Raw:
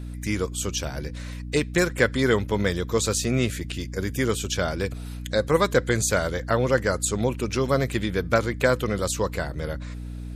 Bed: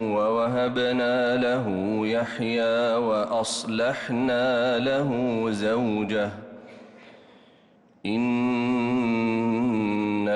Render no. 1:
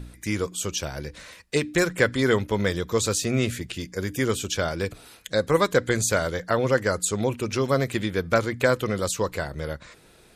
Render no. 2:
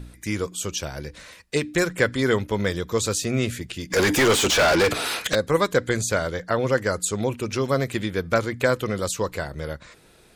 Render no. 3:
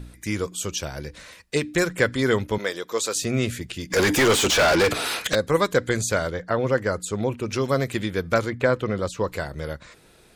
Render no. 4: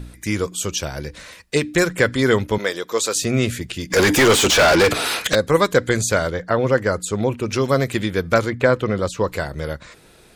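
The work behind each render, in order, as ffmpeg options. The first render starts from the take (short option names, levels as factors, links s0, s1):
-af "bandreject=f=60:t=h:w=4,bandreject=f=120:t=h:w=4,bandreject=f=180:t=h:w=4,bandreject=f=240:t=h:w=4,bandreject=f=300:t=h:w=4"
-filter_complex "[0:a]asplit=3[s0][s1][s2];[s0]afade=t=out:st=3.9:d=0.02[s3];[s1]asplit=2[s4][s5];[s5]highpass=f=720:p=1,volume=44.7,asoftclip=type=tanh:threshold=0.299[s6];[s4][s6]amix=inputs=2:normalize=0,lowpass=f=3900:p=1,volume=0.501,afade=t=in:st=3.9:d=0.02,afade=t=out:st=5.34:d=0.02[s7];[s2]afade=t=in:st=5.34:d=0.02[s8];[s3][s7][s8]amix=inputs=3:normalize=0,asettb=1/sr,asplit=3[s9][s10][s11];[s9]atrim=end=6.014[s12];[s10]atrim=start=6.01:end=6.59,asetpts=PTS-STARTPTS,afade=t=in:d=0.004:c=qsin,afade=t=out:st=0.576:d=0.004:c=qsin,highshelf=f=8200:g=-6[s13];[s11]atrim=start=6.586[s14];[s12][s13]acrossfade=d=0.004:c1=hsin:c2=qsin[s15];[s15][s14]acrossfade=d=0.004:c1=qsin:c2=hsin"
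-filter_complex "[0:a]asettb=1/sr,asplit=3[s0][s1][s2];[s0]atrim=end=2.584[s3];[s1]atrim=start=2.58:end=3.16,asetpts=PTS-STARTPTS,afade=t=in:d=0.004:c=qsin,afade=t=out:st=0.576:d=0.004:c=qsin,highpass=400[s4];[s2]atrim=start=3.156[s5];[s3][s4]acrossfade=d=0.004:c1=hsin:c2=qsin[s6];[s6][s5]acrossfade=d=0.004:c1=qsin:c2=hsin,asettb=1/sr,asplit=3[s7][s8][s9];[s7]atrim=end=6.304[s10];[s8]atrim=start=6.3:end=7.48,asetpts=PTS-STARTPTS,afade=t=in:d=0.004:c=qsin,afade=t=out:st=1.176:d=0.004:c=qsin,highshelf=f=3400:g=-8.5[s11];[s9]atrim=start=7.476[s12];[s10][s11]acrossfade=d=0.004:c1=hsin:c2=qsin[s13];[s13][s12]acrossfade=d=0.004:c1=qsin:c2=hsin,asettb=1/sr,asplit=3[s14][s15][s16];[s14]atrim=end=8.504[s17];[s15]atrim=start=8.5:end=9.28,asetpts=PTS-STARTPTS,afade=t=in:d=0.004:c=qsin,afade=t=out:st=0.776:d=0.004:c=qsin,aemphasis=mode=reproduction:type=75fm[s18];[s16]atrim=start=9.276[s19];[s17][s18]acrossfade=d=0.004:c1=hsin:c2=qsin[s20];[s20][s19]acrossfade=d=0.004:c1=qsin:c2=hsin"
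-af "volume=1.68,alimiter=limit=0.794:level=0:latency=1"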